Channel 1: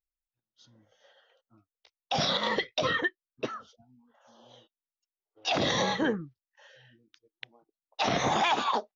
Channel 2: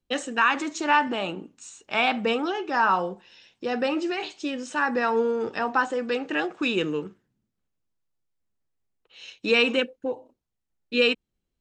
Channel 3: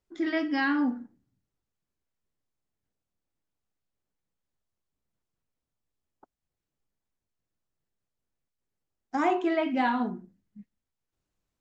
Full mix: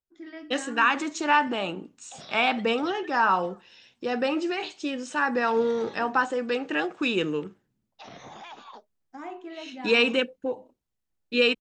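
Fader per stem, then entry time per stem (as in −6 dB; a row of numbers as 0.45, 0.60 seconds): −18.0, −0.5, −13.5 decibels; 0.00, 0.40, 0.00 seconds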